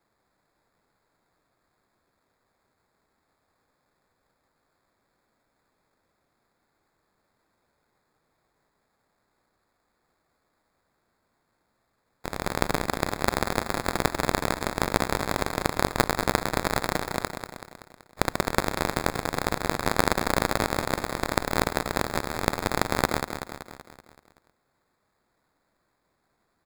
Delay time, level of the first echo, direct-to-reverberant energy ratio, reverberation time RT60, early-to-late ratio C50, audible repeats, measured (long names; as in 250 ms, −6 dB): 190 ms, −8.0 dB, no reverb audible, no reverb audible, no reverb audible, 6